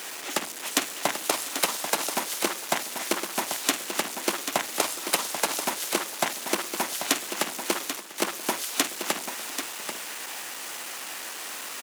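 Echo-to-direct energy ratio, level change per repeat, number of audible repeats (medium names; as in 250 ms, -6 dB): -7.0 dB, no regular repeats, 4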